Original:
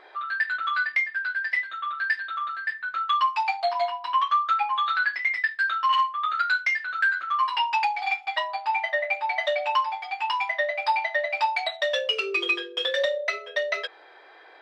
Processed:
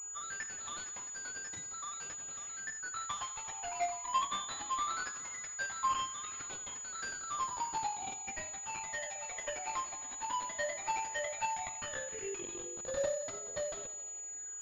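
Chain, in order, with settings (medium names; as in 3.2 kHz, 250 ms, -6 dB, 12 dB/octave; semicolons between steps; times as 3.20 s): dead-time distortion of 0.18 ms; phase shifter stages 12, 0.17 Hz, lowest notch 130–2600 Hz; thinning echo 86 ms, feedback 78%, high-pass 360 Hz, level -15 dB; class-D stage that switches slowly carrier 6.9 kHz; trim -7.5 dB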